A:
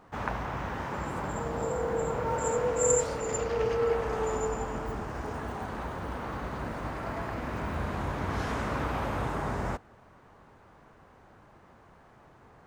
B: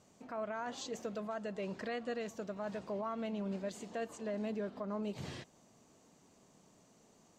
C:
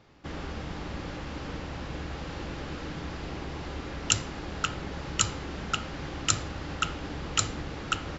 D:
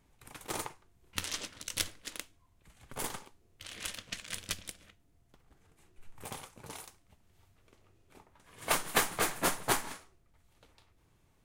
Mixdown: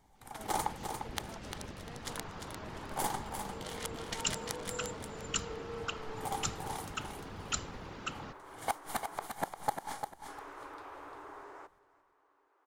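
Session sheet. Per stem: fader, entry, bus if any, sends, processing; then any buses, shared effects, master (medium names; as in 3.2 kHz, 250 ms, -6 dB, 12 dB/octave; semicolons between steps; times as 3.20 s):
-12.5 dB, 1.90 s, muted 9.27–10.28 s, no send, echo send -20.5 dB, rippled Chebyshev high-pass 280 Hz, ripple 6 dB
-14.0 dB, 0.00 s, no send, no echo send, none
-9.5 dB, 0.15 s, no send, no echo send, whisper effect
0.0 dB, 0.00 s, no send, echo send -7 dB, band-stop 2.6 kHz, Q 6; inverted gate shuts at -22 dBFS, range -26 dB; peaking EQ 810 Hz +14.5 dB 0.36 oct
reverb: none
echo: feedback delay 349 ms, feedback 26%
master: none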